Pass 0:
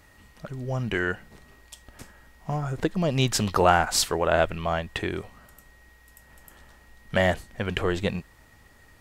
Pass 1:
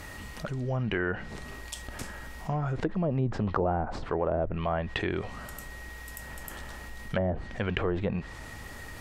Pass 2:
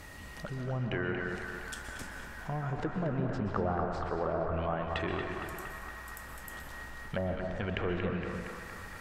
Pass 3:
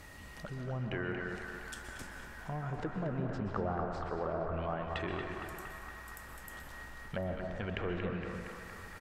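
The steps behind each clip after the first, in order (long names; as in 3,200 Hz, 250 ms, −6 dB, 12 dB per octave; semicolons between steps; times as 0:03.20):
treble cut that deepens with the level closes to 550 Hz, closed at −18.5 dBFS; envelope flattener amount 50%; level −5 dB
feedback echo with a band-pass in the loop 232 ms, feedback 81%, band-pass 1,400 Hz, level −4 dB; on a send at −4.5 dB: convolution reverb RT60 1.7 s, pre-delay 113 ms; on the sum: level −5.5 dB
single-tap delay 747 ms −23 dB; level −3.5 dB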